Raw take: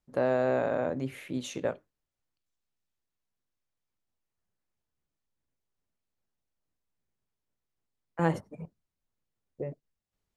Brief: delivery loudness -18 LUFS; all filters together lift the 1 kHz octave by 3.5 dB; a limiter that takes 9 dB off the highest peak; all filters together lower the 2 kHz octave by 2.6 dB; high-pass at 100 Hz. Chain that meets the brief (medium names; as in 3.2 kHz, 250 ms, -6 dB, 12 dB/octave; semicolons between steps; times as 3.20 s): high-pass 100 Hz; peaking EQ 1 kHz +6 dB; peaking EQ 2 kHz -6.5 dB; trim +16 dB; peak limiter -5 dBFS